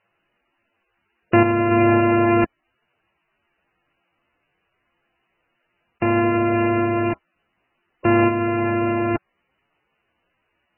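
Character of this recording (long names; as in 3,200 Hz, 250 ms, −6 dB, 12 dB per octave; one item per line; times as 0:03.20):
a buzz of ramps at a fixed pitch in blocks of 128 samples
sample-and-hold tremolo
a quantiser's noise floor 12 bits, dither triangular
MP3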